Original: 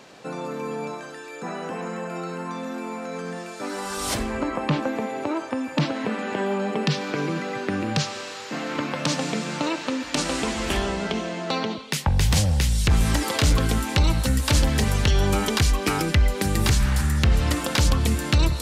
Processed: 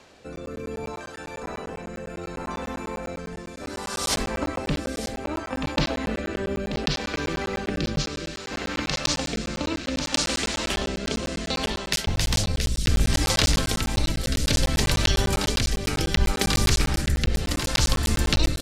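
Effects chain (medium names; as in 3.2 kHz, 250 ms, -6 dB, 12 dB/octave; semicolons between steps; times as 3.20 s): octave divider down 2 oct, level -2 dB; short-mantissa float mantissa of 6-bit; on a send: delay 933 ms -5.5 dB; on the sum: dynamic bell 4.9 kHz, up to +5 dB, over -41 dBFS, Q 1; rotary cabinet horn 0.65 Hz; bass shelf 340 Hz -4.5 dB; crackling interface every 0.10 s, samples 512, zero, from 0.36 s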